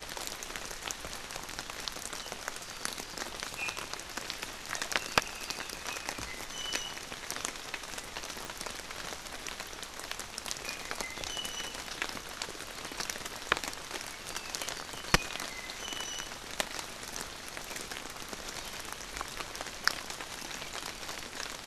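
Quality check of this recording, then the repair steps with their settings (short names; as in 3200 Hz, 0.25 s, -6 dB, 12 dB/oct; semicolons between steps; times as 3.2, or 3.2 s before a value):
8.45 pop -23 dBFS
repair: de-click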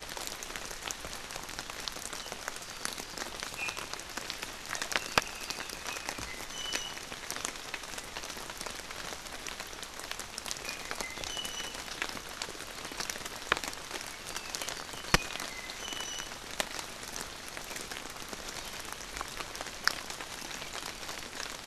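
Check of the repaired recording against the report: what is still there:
8.45 pop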